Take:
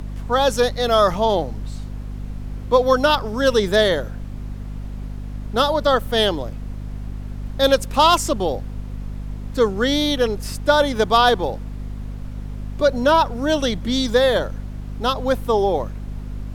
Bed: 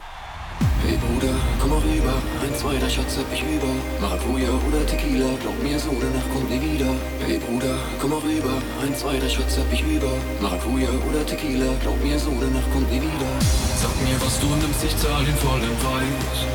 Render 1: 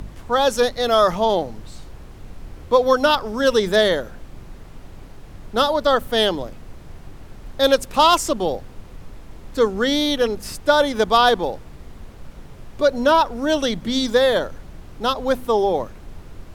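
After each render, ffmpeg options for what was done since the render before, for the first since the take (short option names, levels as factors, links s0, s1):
-af "bandreject=f=50:t=h:w=4,bandreject=f=100:t=h:w=4,bandreject=f=150:t=h:w=4,bandreject=f=200:t=h:w=4,bandreject=f=250:t=h:w=4"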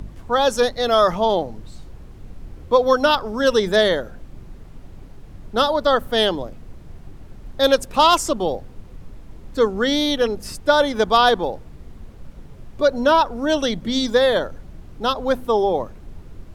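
-af "afftdn=nr=6:nf=-41"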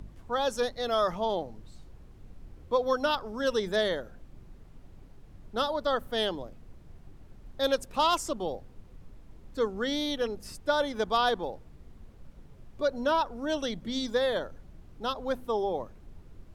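-af "volume=0.282"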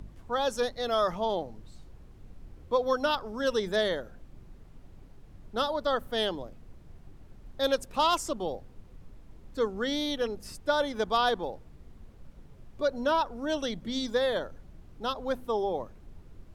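-af anull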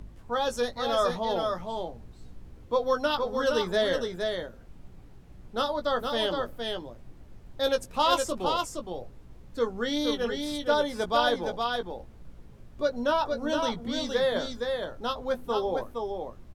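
-filter_complex "[0:a]asplit=2[s0][s1];[s1]adelay=17,volume=0.447[s2];[s0][s2]amix=inputs=2:normalize=0,aecho=1:1:466:0.596"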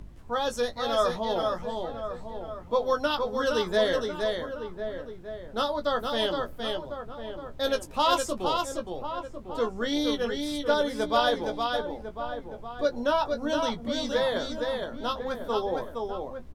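-filter_complex "[0:a]asplit=2[s0][s1];[s1]adelay=14,volume=0.266[s2];[s0][s2]amix=inputs=2:normalize=0,asplit=2[s3][s4];[s4]adelay=1050,volume=0.355,highshelf=f=4000:g=-23.6[s5];[s3][s5]amix=inputs=2:normalize=0"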